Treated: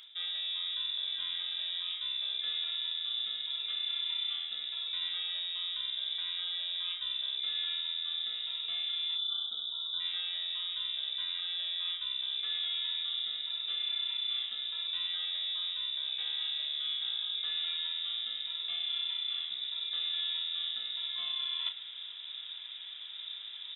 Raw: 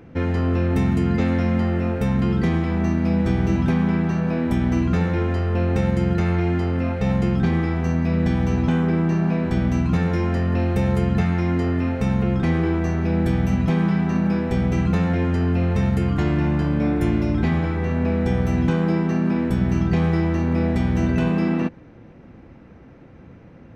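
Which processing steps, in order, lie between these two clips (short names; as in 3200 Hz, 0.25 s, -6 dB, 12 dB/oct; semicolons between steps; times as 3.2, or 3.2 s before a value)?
spectral delete 9.16–10, 740–2100 Hz; inverted band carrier 3700 Hz; bell 87 Hz -4.5 dB 2.9 oct; reverse; compressor 20:1, threshold -33 dBFS, peak gain reduction 19.5 dB; reverse; notches 50/100/150 Hz; doubler 32 ms -9 dB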